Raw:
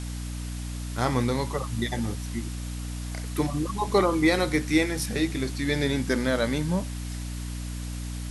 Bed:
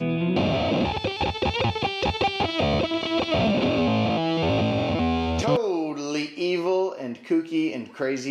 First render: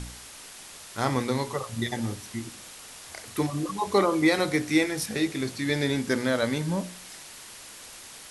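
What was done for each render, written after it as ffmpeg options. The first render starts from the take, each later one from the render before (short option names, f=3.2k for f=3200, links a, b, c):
-af "bandreject=f=60:t=h:w=4,bandreject=f=120:t=h:w=4,bandreject=f=180:t=h:w=4,bandreject=f=240:t=h:w=4,bandreject=f=300:t=h:w=4,bandreject=f=360:t=h:w=4,bandreject=f=420:t=h:w=4,bandreject=f=480:t=h:w=4,bandreject=f=540:t=h:w=4,bandreject=f=600:t=h:w=4,bandreject=f=660:t=h:w=4,bandreject=f=720:t=h:w=4"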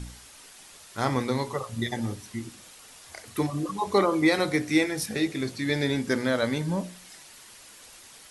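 -af "afftdn=nr=6:nf=-45"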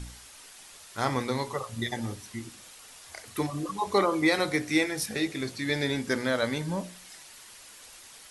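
-af "equalizer=f=190:t=o:w=2.8:g=-4"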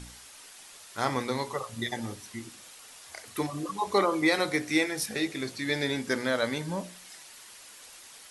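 -af "lowshelf=f=120:g=-8.5"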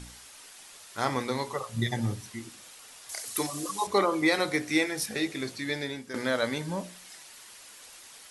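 -filter_complex "[0:a]asettb=1/sr,asplit=3[a][b][c];[a]atrim=end=1.744[d];[b]atrim=start=1.74:end=2.3,asetpts=PTS-STARTPTS,afade=t=in:d=0.004:c=qsin,afade=t=out:st=0.556:d=0.004:c=qsin,equalizer=f=130:t=o:w=1.1:g=13.5[e];[c]atrim=start=2.296[f];[d][e]acrossfade=d=0.004:c1=hsin:c2=qsin[g];[g][f]acrossfade=d=0.004:c1=qsin:c2=hsin,asettb=1/sr,asplit=3[h][i][j];[h]atrim=end=3.094[k];[i]atrim=start=3.09:end=3.87,asetpts=PTS-STARTPTS,afade=t=in:d=0.004:c=qsin,afade=t=out:st=0.776:d=0.004:c=qsin,bass=f=250:g=-5,treble=f=4k:g=12[l];[j]atrim=start=3.866[m];[k][l]acrossfade=d=0.004:c1=hsin:c2=qsin[n];[n][m]acrossfade=d=0.004:c1=qsin:c2=hsin,asplit=2[o][p];[o]atrim=end=6.14,asetpts=PTS-STARTPTS,afade=t=out:st=5.51:d=0.63:silence=0.223872[q];[p]atrim=start=6.14,asetpts=PTS-STARTPTS,afade=t=in:d=0.004:c=hsin:silence=0.223872[r];[q][r]concat=n=2:v=0:a=1"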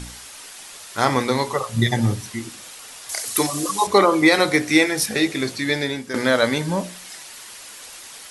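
-af "volume=10dB,alimiter=limit=-3dB:level=0:latency=1"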